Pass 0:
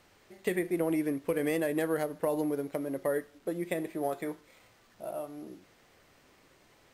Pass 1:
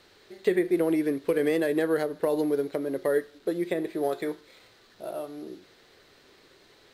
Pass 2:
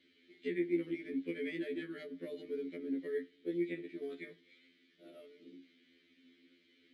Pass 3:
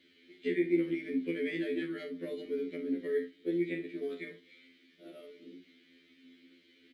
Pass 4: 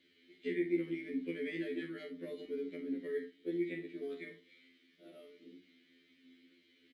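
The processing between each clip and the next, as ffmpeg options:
ffmpeg -i in.wav -filter_complex "[0:a]acrossover=split=2000[link_01][link_02];[link_02]alimiter=level_in=10.5dB:limit=-24dB:level=0:latency=1:release=248,volume=-10.5dB[link_03];[link_01][link_03]amix=inputs=2:normalize=0,equalizer=frequency=400:width_type=o:width=0.67:gain=9,equalizer=frequency=1600:width_type=o:width=0.67:gain=5,equalizer=frequency=4000:width_type=o:width=0.67:gain=12" out.wav
ffmpeg -i in.wav -filter_complex "[0:a]asplit=3[link_01][link_02][link_03];[link_01]bandpass=frequency=270:width_type=q:width=8,volume=0dB[link_04];[link_02]bandpass=frequency=2290:width_type=q:width=8,volume=-6dB[link_05];[link_03]bandpass=frequency=3010:width_type=q:width=8,volume=-9dB[link_06];[link_04][link_05][link_06]amix=inputs=3:normalize=0,afftfilt=real='re*2*eq(mod(b,4),0)':imag='im*2*eq(mod(b,4),0)':win_size=2048:overlap=0.75,volume=5dB" out.wav
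ffmpeg -i in.wav -af "aecho=1:1:42|69:0.376|0.188,volume=4.5dB" out.wav
ffmpeg -i in.wav -filter_complex "[0:a]asplit=2[link_01][link_02];[link_02]adelay=43,volume=-10.5dB[link_03];[link_01][link_03]amix=inputs=2:normalize=0,volume=-5dB" out.wav

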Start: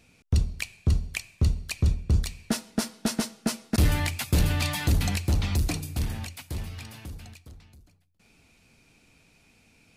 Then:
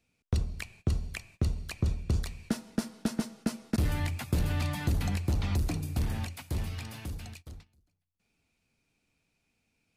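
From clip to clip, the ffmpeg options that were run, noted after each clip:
ffmpeg -i in.wav -filter_complex "[0:a]agate=range=-18dB:threshold=-49dB:ratio=16:detection=peak,acrossover=split=340|1800[link_01][link_02][link_03];[link_01]acompressor=threshold=-28dB:ratio=4[link_04];[link_02]acompressor=threshold=-42dB:ratio=4[link_05];[link_03]acompressor=threshold=-46dB:ratio=4[link_06];[link_04][link_05][link_06]amix=inputs=3:normalize=0,volume=1.5dB" out.wav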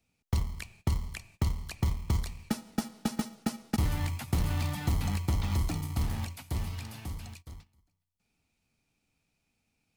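ffmpeg -i in.wav -filter_complex "[0:a]acrossover=split=400|6700[link_01][link_02][link_03];[link_01]acrusher=samples=42:mix=1:aa=0.000001[link_04];[link_04][link_02][link_03]amix=inputs=3:normalize=0,equalizer=frequency=1700:width=0.57:gain=-3.5" out.wav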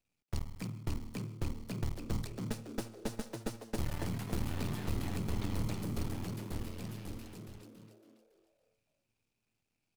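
ffmpeg -i in.wav -filter_complex "[0:a]aeval=exprs='max(val(0),0)':channel_layout=same,asplit=2[link_01][link_02];[link_02]asplit=5[link_03][link_04][link_05][link_06][link_07];[link_03]adelay=279,afreqshift=110,volume=-5dB[link_08];[link_04]adelay=558,afreqshift=220,volume=-12.3dB[link_09];[link_05]adelay=837,afreqshift=330,volume=-19.7dB[link_10];[link_06]adelay=1116,afreqshift=440,volume=-27dB[link_11];[link_07]adelay=1395,afreqshift=550,volume=-34.3dB[link_12];[link_08][link_09][link_10][link_11][link_12]amix=inputs=5:normalize=0[link_13];[link_01][link_13]amix=inputs=2:normalize=0,volume=-4dB" out.wav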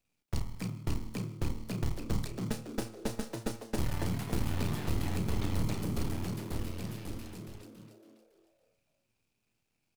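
ffmpeg -i in.wav -filter_complex "[0:a]asplit=2[link_01][link_02];[link_02]adelay=33,volume=-9.5dB[link_03];[link_01][link_03]amix=inputs=2:normalize=0,volume=3dB" out.wav

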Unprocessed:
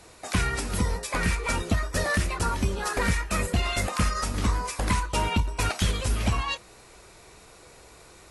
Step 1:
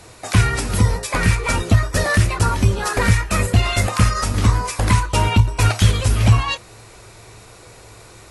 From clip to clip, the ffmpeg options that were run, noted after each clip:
ffmpeg -i in.wav -af "equalizer=frequency=110:width=6.1:gain=14.5,volume=7dB" out.wav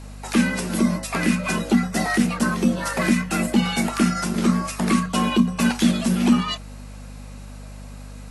ffmpeg -i in.wav -af "afreqshift=130,aeval=exprs='val(0)+0.0251*(sin(2*PI*50*n/s)+sin(2*PI*2*50*n/s)/2+sin(2*PI*3*50*n/s)/3+sin(2*PI*4*50*n/s)/4+sin(2*PI*5*50*n/s)/5)':channel_layout=same,volume=-4.5dB" out.wav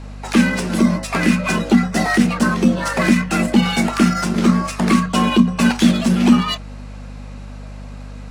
ffmpeg -i in.wav -af "adynamicsmooth=sensitivity=6.5:basefreq=5200,volume=5dB" out.wav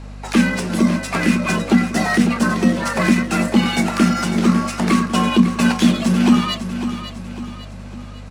ffmpeg -i in.wav -af "aecho=1:1:551|1102|1653|2204|2755:0.299|0.134|0.0605|0.0272|0.0122,volume=-1dB" out.wav

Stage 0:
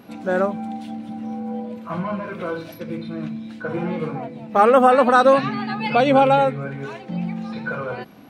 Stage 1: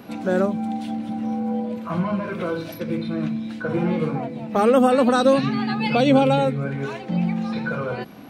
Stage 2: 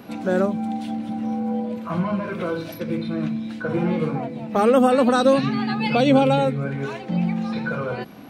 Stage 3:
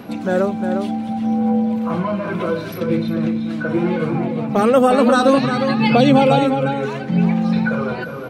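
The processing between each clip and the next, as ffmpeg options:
ffmpeg -i in.wav -filter_complex "[0:a]acrossover=split=430|3000[link_01][link_02][link_03];[link_02]acompressor=threshold=-36dB:ratio=2[link_04];[link_01][link_04][link_03]amix=inputs=3:normalize=0,volume=4dB" out.wav
ffmpeg -i in.wav -af anull out.wav
ffmpeg -i in.wav -filter_complex "[0:a]aphaser=in_gain=1:out_gain=1:delay=3.3:decay=0.33:speed=0.68:type=sinusoidal,asplit=2[link_01][link_02];[link_02]adelay=355.7,volume=-6dB,highshelf=frequency=4000:gain=-8[link_03];[link_01][link_03]amix=inputs=2:normalize=0,volume=3dB" out.wav

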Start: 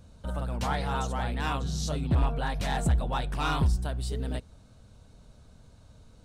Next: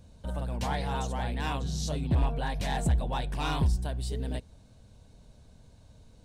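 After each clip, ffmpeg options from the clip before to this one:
ffmpeg -i in.wav -af "equalizer=frequency=1300:width_type=o:width=0.26:gain=-10,volume=-1dB" out.wav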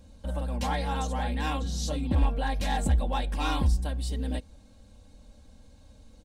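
ffmpeg -i in.wav -af "aecho=1:1:3.7:0.76" out.wav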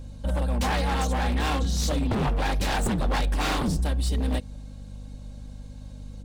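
ffmpeg -i in.wav -af "aeval=exprs='0.0531*(abs(mod(val(0)/0.0531+3,4)-2)-1)':channel_layout=same,aeval=exprs='val(0)+0.00562*(sin(2*PI*50*n/s)+sin(2*PI*2*50*n/s)/2+sin(2*PI*3*50*n/s)/3+sin(2*PI*4*50*n/s)/4+sin(2*PI*5*50*n/s)/5)':channel_layout=same,volume=6dB" out.wav

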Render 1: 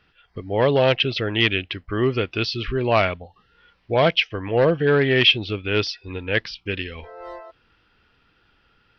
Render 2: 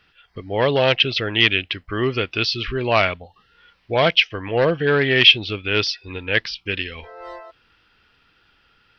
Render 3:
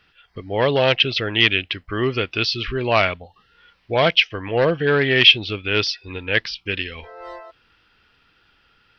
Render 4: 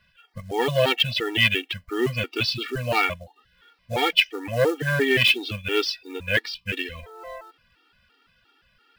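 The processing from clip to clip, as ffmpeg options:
ffmpeg -i in.wav -af "tiltshelf=frequency=1200:gain=-3.5,volume=2dB" out.wav
ffmpeg -i in.wav -af anull out.wav
ffmpeg -i in.wav -af "acrusher=bits=5:mode=log:mix=0:aa=0.000001,afftfilt=real='re*gt(sin(2*PI*2.9*pts/sr)*(1-2*mod(floor(b*sr/1024/240),2)),0)':imag='im*gt(sin(2*PI*2.9*pts/sr)*(1-2*mod(floor(b*sr/1024/240),2)),0)':win_size=1024:overlap=0.75" out.wav

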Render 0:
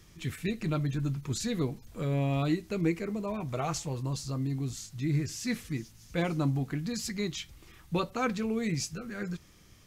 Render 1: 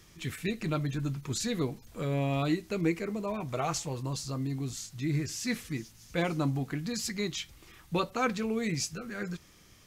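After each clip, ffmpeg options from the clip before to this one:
ffmpeg -i in.wav -af "lowshelf=frequency=240:gain=-5.5,volume=2dB" out.wav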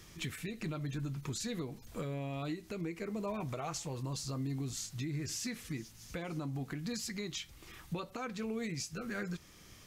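ffmpeg -i in.wav -af "acompressor=threshold=-31dB:ratio=6,alimiter=level_in=7.5dB:limit=-24dB:level=0:latency=1:release=356,volume=-7.5dB,volume=2dB" out.wav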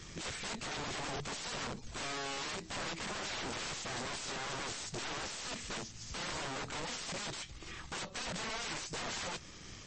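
ffmpeg -i in.wav -af "aeval=exprs='(mod(106*val(0)+1,2)-1)/106':channel_layout=same,aeval=exprs='0.00944*(cos(1*acos(clip(val(0)/0.00944,-1,1)))-cos(1*PI/2))+0.000596*(cos(8*acos(clip(val(0)/0.00944,-1,1)))-cos(8*PI/2))':channel_layout=same,volume=6dB" -ar 22050 -c:a libmp3lame -b:a 32k out.mp3

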